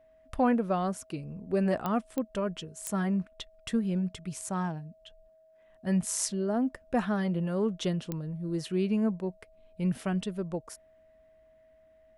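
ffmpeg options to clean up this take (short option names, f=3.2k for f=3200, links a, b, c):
-af "adeclick=t=4,bandreject=f=640:w=30"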